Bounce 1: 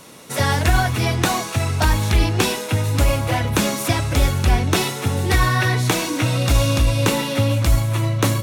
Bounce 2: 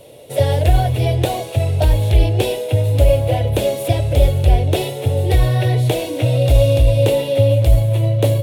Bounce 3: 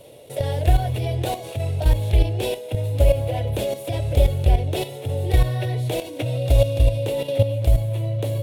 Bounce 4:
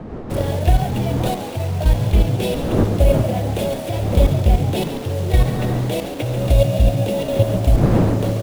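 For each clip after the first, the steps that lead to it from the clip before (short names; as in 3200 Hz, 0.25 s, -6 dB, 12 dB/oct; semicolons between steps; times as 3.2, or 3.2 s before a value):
EQ curve 130 Hz 0 dB, 190 Hz -16 dB, 580 Hz +6 dB, 1200 Hz -22 dB, 3200 Hz -5 dB, 6000 Hz -18 dB, 10000 Hz -8 dB; gain +4.5 dB
level quantiser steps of 11 dB; gain -1.5 dB
level-crossing sampler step -34.5 dBFS; wind noise 330 Hz -28 dBFS; frequency-shifting echo 0.139 s, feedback 51%, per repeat +74 Hz, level -10 dB; gain +2 dB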